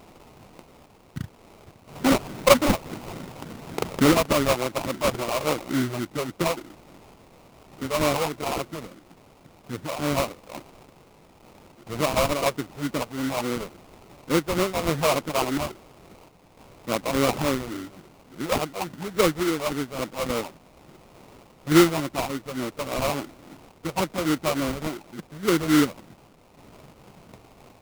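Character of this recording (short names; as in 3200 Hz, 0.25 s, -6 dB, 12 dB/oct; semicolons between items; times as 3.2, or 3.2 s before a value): a quantiser's noise floor 8-bit, dither triangular; phasing stages 8, 3.5 Hz, lowest notch 280–1600 Hz; aliases and images of a low sample rate 1700 Hz, jitter 20%; random-step tremolo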